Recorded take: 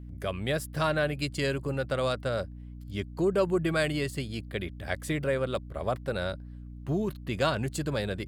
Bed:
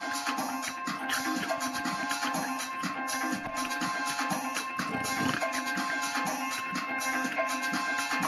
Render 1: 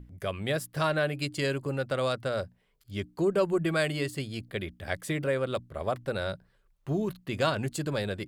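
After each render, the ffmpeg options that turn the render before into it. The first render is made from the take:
-af "bandreject=f=60:t=h:w=6,bandreject=f=120:t=h:w=6,bandreject=f=180:t=h:w=6,bandreject=f=240:t=h:w=6,bandreject=f=300:t=h:w=6"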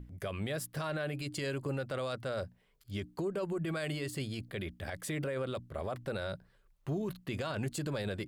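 -af "acompressor=threshold=0.0447:ratio=6,alimiter=level_in=1.58:limit=0.0631:level=0:latency=1:release=21,volume=0.631"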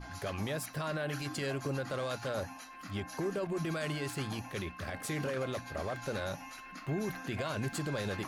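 -filter_complex "[1:a]volume=0.188[s0];[0:a][s0]amix=inputs=2:normalize=0"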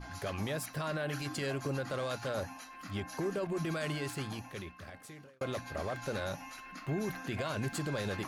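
-filter_complex "[0:a]asplit=2[s0][s1];[s0]atrim=end=5.41,asetpts=PTS-STARTPTS,afade=t=out:st=3.98:d=1.43[s2];[s1]atrim=start=5.41,asetpts=PTS-STARTPTS,afade=t=in:d=0.004:c=hsin[s3];[s2][s3]concat=n=2:v=0:a=1"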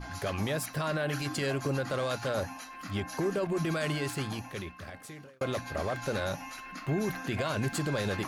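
-af "volume=1.68"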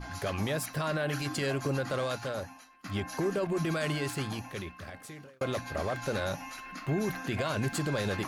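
-filter_complex "[0:a]asplit=2[s0][s1];[s0]atrim=end=2.84,asetpts=PTS-STARTPTS,afade=t=out:st=2:d=0.84:silence=0.0841395[s2];[s1]atrim=start=2.84,asetpts=PTS-STARTPTS,afade=t=in:d=0.004:c=hsin:silence=0.0841395[s3];[s2][s3]concat=n=2:v=0:a=1"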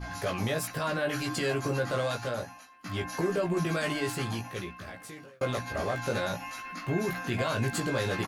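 -filter_complex "[0:a]asplit=2[s0][s1];[s1]adelay=17,volume=0.708[s2];[s0][s2]amix=inputs=2:normalize=0"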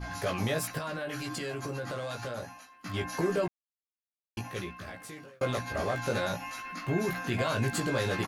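-filter_complex "[0:a]asettb=1/sr,asplit=3[s0][s1][s2];[s0]atrim=end=0.784[s3];[s1]atrim=start=0.78:end=2.94,asetpts=PTS-STARTPTS,afade=t=in:d=0.004:c=qsin,afade=t=out:st=2.156:d=0.004:c=qsin,acompressor=threshold=0.0224:ratio=4:attack=3.2:release=140:knee=1:detection=peak[s4];[s2]atrim=start=2.936[s5];[s3][s4]acrossfade=d=0.004:c1=hsin:c2=qsin[s6];[s6][s5]acrossfade=d=0.004:c1=qsin:c2=hsin,asplit=3[s7][s8][s9];[s7]atrim=end=3.48,asetpts=PTS-STARTPTS,afade=t=out:st=3.476:d=0.004:c=hsin[s10];[s8]atrim=start=3.48:end=4.37,asetpts=PTS-STARTPTS,volume=0[s11];[s9]atrim=start=4.37,asetpts=PTS-STARTPTS,afade=t=in:d=0.004:c=hsin[s12];[s10][s11][s12]concat=n=3:v=0:a=1"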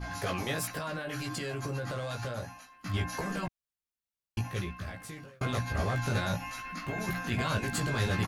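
-af "afftfilt=real='re*lt(hypot(re,im),0.224)':imag='im*lt(hypot(re,im),0.224)':win_size=1024:overlap=0.75,asubboost=boost=3:cutoff=180"

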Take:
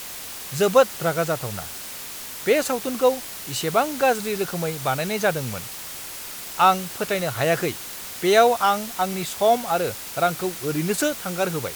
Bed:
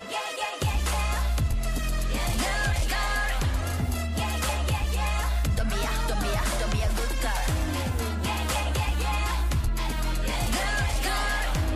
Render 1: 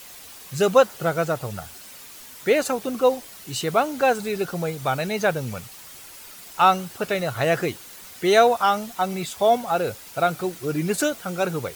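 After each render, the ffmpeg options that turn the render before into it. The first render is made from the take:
-af "afftdn=nr=9:nf=-36"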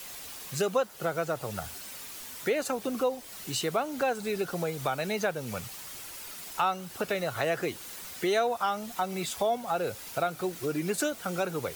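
-filter_complex "[0:a]acrossover=split=200|700|6600[s0][s1][s2][s3];[s0]alimiter=level_in=4.47:limit=0.0631:level=0:latency=1,volume=0.224[s4];[s4][s1][s2][s3]amix=inputs=4:normalize=0,acompressor=threshold=0.0355:ratio=2.5"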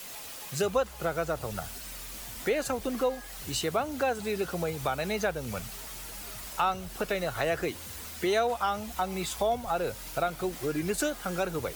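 -filter_complex "[1:a]volume=0.0841[s0];[0:a][s0]amix=inputs=2:normalize=0"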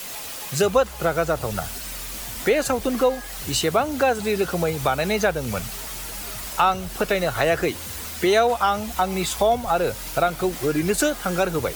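-af "volume=2.66"

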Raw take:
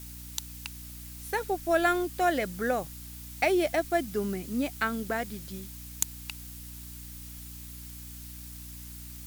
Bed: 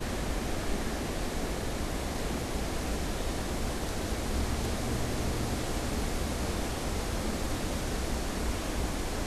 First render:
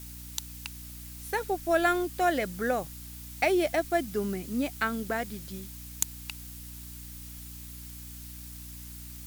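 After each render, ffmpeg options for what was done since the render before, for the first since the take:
-af anull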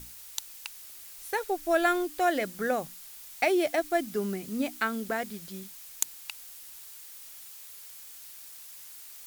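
-af "bandreject=f=60:t=h:w=6,bandreject=f=120:t=h:w=6,bandreject=f=180:t=h:w=6,bandreject=f=240:t=h:w=6,bandreject=f=300:t=h:w=6"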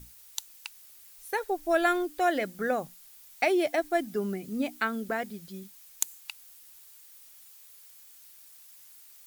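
-af "afftdn=nr=8:nf=-47"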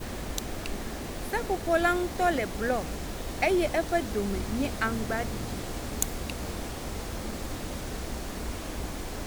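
-filter_complex "[1:a]volume=0.708[s0];[0:a][s0]amix=inputs=2:normalize=0"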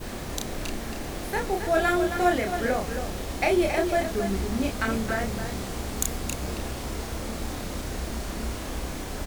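-filter_complex "[0:a]asplit=2[s0][s1];[s1]adelay=31,volume=0.708[s2];[s0][s2]amix=inputs=2:normalize=0,asplit=2[s3][s4];[s4]aecho=0:1:271:0.398[s5];[s3][s5]amix=inputs=2:normalize=0"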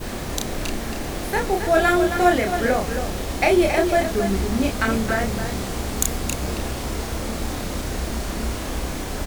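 -af "volume=1.88"

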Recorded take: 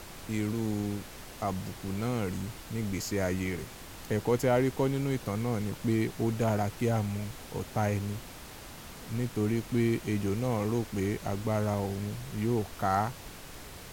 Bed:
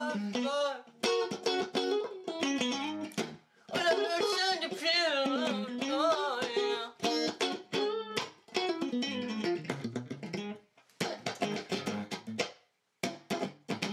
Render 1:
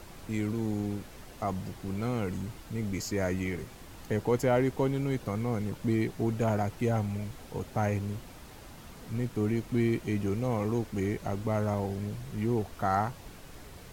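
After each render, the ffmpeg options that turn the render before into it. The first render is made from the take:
-af "afftdn=nr=6:nf=-46"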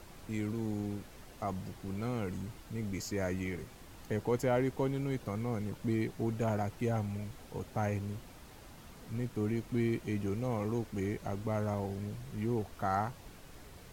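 -af "volume=0.596"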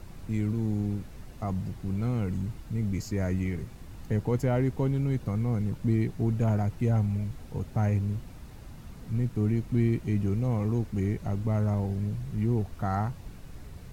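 -af "bass=f=250:g=11,treble=f=4000:g=-1,bandreject=f=3200:w=27"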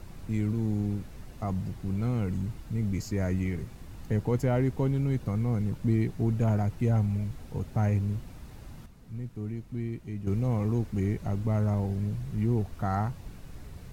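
-filter_complex "[0:a]asplit=3[s0][s1][s2];[s0]atrim=end=8.862[s3];[s1]atrim=start=8.858:end=10.272,asetpts=PTS-STARTPTS,volume=0.355[s4];[s2]atrim=start=10.268[s5];[s3][s4]acrossfade=d=0.004:c1=hsin:c2=hsin[s6];[s6][s5]acrossfade=d=0.004:c1=hsin:c2=hsin"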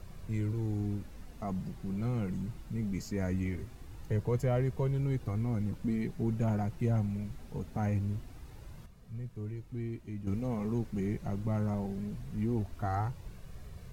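-af "flanger=delay=1.7:depth=4:regen=-44:speed=0.22:shape=sinusoidal"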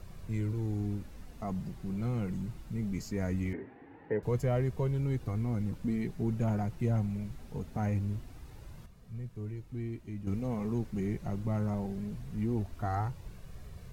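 -filter_complex "[0:a]asettb=1/sr,asplit=3[s0][s1][s2];[s0]atrim=end=3.534[s3];[s1]atrim=start=3.53:end=4.23,asetpts=PTS-STARTPTS,afade=t=in:d=0.004:c=qsin,afade=t=out:st=0.696:d=0.004:c=qsin,highpass=220,equalizer=f=280:t=q:w=4:g=9,equalizer=f=450:t=q:w=4:g=8,equalizer=f=830:t=q:w=4:g=9,equalizer=f=1200:t=q:w=4:g=-6,equalizer=f=1800:t=q:w=4:g=8,lowpass=f=2300:w=0.5412,lowpass=f=2300:w=1.3066[s4];[s2]atrim=start=4.226[s5];[s3][s4]acrossfade=d=0.004:c1=hsin:c2=qsin[s6];[s6][s5]acrossfade=d=0.004:c1=qsin:c2=hsin"

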